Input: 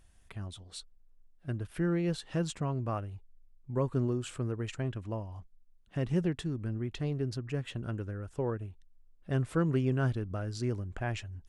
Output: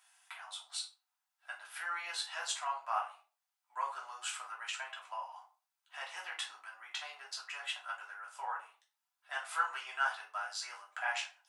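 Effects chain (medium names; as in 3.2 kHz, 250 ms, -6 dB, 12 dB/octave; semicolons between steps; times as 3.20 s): Chebyshev high-pass 780 Hz, order 5; simulated room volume 220 m³, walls furnished, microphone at 2.9 m; trim +1.5 dB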